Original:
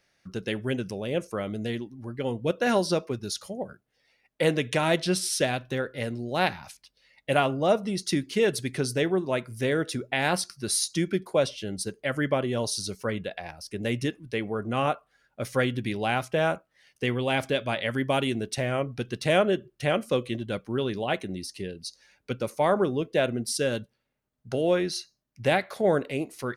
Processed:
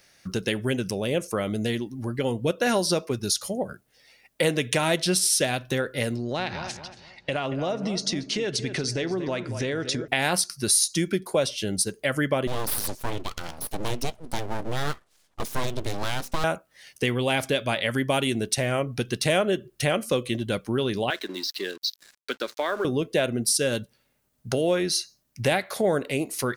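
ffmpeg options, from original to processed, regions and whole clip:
-filter_complex "[0:a]asettb=1/sr,asplit=3[s0][s1][s2];[s0]atrim=end=6.164[s3];[s1]atrim=start=6.16:end=10.08,asetpts=PTS-STARTPTS,afade=t=in:d=0.004:c=qsin,afade=t=out:st=3.916:d=0.004:c=qsin,lowpass=f=6500:w=0.5412,lowpass=f=6500:w=1.3066,acompressor=threshold=0.0282:ratio=4:attack=3.2:release=140:knee=1:detection=peak,asplit=2[s4][s5];[s5]adelay=231,lowpass=f=2300:p=1,volume=0.299,asplit=2[s6][s7];[s7]adelay=231,lowpass=f=2300:p=1,volume=0.34,asplit=2[s8][s9];[s9]adelay=231,lowpass=f=2300:p=1,volume=0.34,asplit=2[s10][s11];[s11]adelay=231,lowpass=f=2300:p=1,volume=0.34[s12];[s4][s6][s8][s10][s12]amix=inputs=5:normalize=0,atrim=end_sample=172872[s13];[s2]atrim=start=10.076[s14];[s3][s13]acrossfade=d=0.004:c1=hsin:c2=qsin[s15];[s15][s14]acrossfade=d=0.004:c1=qsin:c2=hsin,asettb=1/sr,asplit=3[s16][s17][s18];[s16]atrim=end=12.474[s19];[s17]atrim=start=12.47:end=16.44,asetpts=PTS-STARTPTS,afade=t=in:d=0.004:c=qsin,afade=t=out:st=3.966:d=0.004:c=qsin,lowpass=7600,equalizer=f=1600:t=o:w=1.1:g=-15,aeval=exprs='abs(val(0))':c=same[s20];[s18]atrim=start=16.436[s21];[s19][s20]acrossfade=d=0.004:c1=hsin:c2=qsin[s22];[s22][s21]acrossfade=d=0.004:c1=qsin:c2=hsin,asettb=1/sr,asplit=3[s23][s24][s25];[s23]atrim=end=21.104[s26];[s24]atrim=start=21.1:end=22.85,asetpts=PTS-STARTPTS,afade=t=in:d=0.004:c=qsin,afade=t=out:st=1.746:d=0.004:c=qsin,highpass=f=300:w=0.5412,highpass=f=300:w=1.3066,equalizer=f=500:t=q:w=4:g=-6,equalizer=f=810:t=q:w=4:g=-8,equalizer=f=1600:t=q:w=4:g=9,equalizer=f=2500:t=q:w=4:g=-4,equalizer=f=3900:t=q:w=4:g=8,lowpass=f=5000:w=0.5412,lowpass=f=5000:w=1.3066,acompressor=threshold=0.0316:ratio=2:attack=3.2:release=140:knee=1:detection=peak,aeval=exprs='sgn(val(0))*max(abs(val(0))-0.002,0)':c=same[s27];[s25]atrim=start=22.846[s28];[s26][s27]acrossfade=d=0.004:c1=hsin:c2=qsin[s29];[s29][s28]acrossfade=d=0.004:c1=qsin:c2=hsin,highshelf=f=5200:g=10.5,acompressor=threshold=0.0178:ratio=2,volume=2.66"

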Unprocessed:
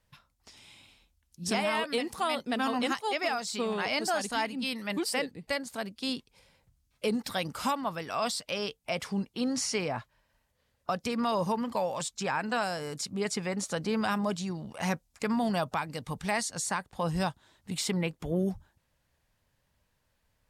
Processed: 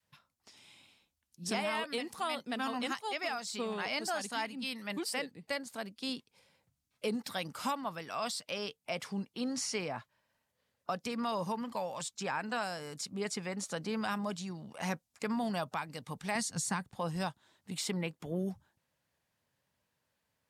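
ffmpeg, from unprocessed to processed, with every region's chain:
-filter_complex "[0:a]asettb=1/sr,asplit=3[s0][s1][s2];[s0]atrim=end=16.354[s3];[s1]atrim=start=16.35:end=16.95,asetpts=PTS-STARTPTS,afade=t=in:d=0.004:c=qsin,afade=t=out:st=0.596:d=0.004:c=qsin,bass=f=250:g=13,treble=f=4000:g=2,bandreject=f=590:w=8.8[s4];[s2]atrim=start=16.946[s5];[s3][s4]acrossfade=d=0.004:c1=hsin:c2=qsin[s6];[s6][s5]acrossfade=d=0.004:c1=qsin:c2=hsin,highpass=130,adynamicequalizer=threshold=0.00794:dfrequency=430:dqfactor=0.82:tfrequency=430:tqfactor=0.82:attack=5:release=100:ratio=0.375:range=2:mode=cutabove:tftype=bell,volume=0.596"

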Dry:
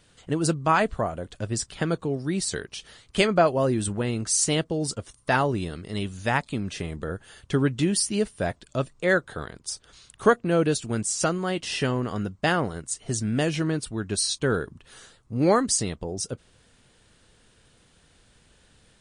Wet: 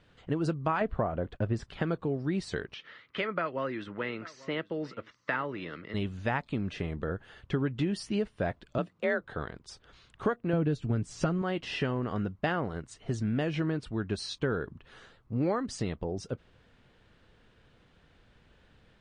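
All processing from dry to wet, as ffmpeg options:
-filter_complex "[0:a]asettb=1/sr,asplit=3[s0][s1][s2];[s0]atrim=end=0.814[s3];[s1]atrim=start=0.81:end=1.64,asetpts=PTS-STARTPTS,afade=t=in:d=0.004:c=qsin,afade=t=out:st=0.826:d=0.004:c=qsin,agate=range=0.0224:threshold=0.00631:ratio=3:release=100:detection=peak,highshelf=f=3500:g=-11.5,acontrast=33[s4];[s2]atrim=start=1.636[s5];[s3][s4]acrossfade=d=0.004:c1=hsin:c2=qsin[s6];[s6][s5]acrossfade=d=0.004:c1=qsin:c2=hsin,asettb=1/sr,asplit=3[s7][s8][s9];[s7]atrim=end=2.744[s10];[s8]atrim=start=2.74:end=5.94,asetpts=PTS-STARTPTS,afade=t=in:d=0.004:c=qsin,afade=t=out:st=3.196:d=0.004:c=qsin,acrossover=split=350|1300[s11][s12][s13];[s11]acompressor=threshold=0.0251:ratio=4[s14];[s12]acompressor=threshold=0.0398:ratio=4[s15];[s13]acompressor=threshold=0.0224:ratio=4[s16];[s14][s15][s16]amix=inputs=3:normalize=0,highpass=210,equalizer=f=220:t=q:w=4:g=-4,equalizer=f=390:t=q:w=4:g=-5,equalizer=f=740:t=q:w=4:g=-9,equalizer=f=1300:t=q:w=4:g=5,equalizer=f=2000:t=q:w=4:g=8,equalizer=f=4500:t=q:w=4:g=-3,lowpass=f=5300:w=0.5412,lowpass=f=5300:w=1.3066,aecho=1:1:841:0.0891,atrim=end_sample=141120[s17];[s9]atrim=start=5.936[s18];[s10][s17]acrossfade=d=0.004:c1=hsin:c2=qsin[s19];[s19][s18]acrossfade=d=0.004:c1=qsin:c2=hsin,asettb=1/sr,asplit=3[s20][s21][s22];[s20]atrim=end=8.784[s23];[s21]atrim=start=8.78:end=9.21,asetpts=PTS-STARTPTS,afade=t=in:d=0.004:c=qsin,afade=t=out:st=0.426:d=0.004:c=qsin,highpass=72,afreqshift=42[s24];[s22]atrim=start=9.206[s25];[s23][s24]acrossfade=d=0.004:c1=hsin:c2=qsin[s26];[s26][s25]acrossfade=d=0.004:c1=qsin:c2=hsin,asettb=1/sr,asplit=3[s27][s28][s29];[s27]atrim=end=10.534[s30];[s28]atrim=start=10.53:end=11.42,asetpts=PTS-STARTPTS,afade=t=in:d=0.004:c=qsin,afade=t=out:st=0.886:d=0.004:c=qsin,lowshelf=f=300:g=11,aecho=1:1:7.1:0.3,atrim=end_sample=39249[s31];[s29]atrim=start=11.416[s32];[s30][s31]acrossfade=d=0.004:c1=hsin:c2=qsin[s33];[s33][s32]acrossfade=d=0.004:c1=qsin:c2=hsin,lowpass=2800,acompressor=threshold=0.0631:ratio=5,volume=0.841"

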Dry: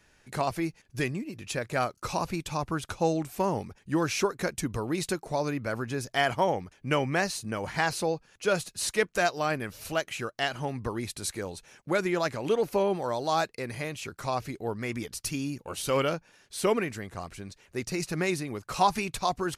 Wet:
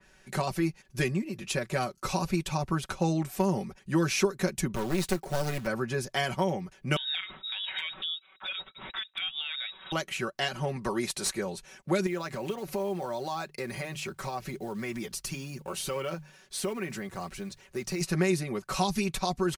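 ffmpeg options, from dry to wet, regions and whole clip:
-filter_complex "[0:a]asettb=1/sr,asplit=3[s0][s1][s2];[s0]atrim=end=4.754[s3];[s1]atrim=start=4.75:end=5.67,asetpts=PTS-STARTPTS,afade=t=in:d=0.004:c=qsin,afade=t=out:st=0.916:d=0.004:c=qsin,acrusher=bits=3:mode=log:mix=0:aa=0.000001,aeval=exprs='clip(val(0),-1,0.0141)':c=same[s4];[s2]atrim=start=5.666[s5];[s3][s4]acrossfade=d=0.004:c1=hsin:c2=qsin[s6];[s6][s5]acrossfade=d=0.004:c1=qsin:c2=hsin,asettb=1/sr,asplit=3[s7][s8][s9];[s7]atrim=end=6.964[s10];[s8]atrim=start=6.96:end=9.92,asetpts=PTS-STARTPTS,afade=t=in:d=0.004:c=qsin,afade=t=out:st=2.956:d=0.004:c=qsin,lowpass=f=3300:t=q:w=0.5098,lowpass=f=3300:t=q:w=0.6013,lowpass=f=3300:t=q:w=0.9,lowpass=f=3300:t=q:w=2.563,afreqshift=-3900,acompressor=threshold=0.0282:ratio=16:attack=3.2:release=140:knee=1:detection=peak,volume=16.8,asoftclip=hard,volume=0.0596[s11];[s9]atrim=start=9.916[s12];[s10][s11]acrossfade=d=0.004:c1=hsin:c2=qsin[s13];[s13][s12]acrossfade=d=0.004:c1=qsin:c2=hsin,asettb=1/sr,asplit=3[s14][s15][s16];[s14]atrim=end=10.764[s17];[s15]atrim=start=10.76:end=11.33,asetpts=PTS-STARTPTS,afade=t=in:d=0.004:c=qsin,afade=t=out:st=0.566:d=0.004:c=qsin,bass=f=250:g=1,treble=f=4000:g=13,asplit=2[s18][s19];[s19]highpass=f=720:p=1,volume=3.55,asoftclip=type=tanh:threshold=0.376[s20];[s18][s20]amix=inputs=2:normalize=0,lowpass=f=1400:p=1,volume=0.501[s21];[s16]atrim=start=11.326[s22];[s17][s21]acrossfade=d=0.004:c1=hsin:c2=qsin[s23];[s23][s22]acrossfade=d=0.004:c1=qsin:c2=hsin,asettb=1/sr,asplit=3[s24][s25][s26];[s24]atrim=end=12.064[s27];[s25]atrim=start=12.06:end=18.01,asetpts=PTS-STARTPTS,afade=t=in:d=0.004:c=qsin,afade=t=out:st=5.946:d=0.004:c=qsin,bandreject=f=50:t=h:w=6,bandreject=f=100:t=h:w=6,bandreject=f=150:t=h:w=6,acrusher=bits=6:mode=log:mix=0:aa=0.000001,acompressor=threshold=0.0224:ratio=4:attack=3.2:release=140:knee=1:detection=peak[s28];[s26]atrim=start=18.006[s29];[s27][s28]acrossfade=d=0.004:c1=hsin:c2=qsin[s30];[s30][s29]acrossfade=d=0.004:c1=qsin:c2=hsin,aecho=1:1:5.3:0.74,acrossover=split=350|3000[s31][s32][s33];[s32]acompressor=threshold=0.0316:ratio=6[s34];[s31][s34][s33]amix=inputs=3:normalize=0,adynamicequalizer=threshold=0.00562:dfrequency=3100:dqfactor=0.7:tfrequency=3100:tqfactor=0.7:attack=5:release=100:ratio=0.375:range=1.5:mode=cutabove:tftype=highshelf,volume=1.12"

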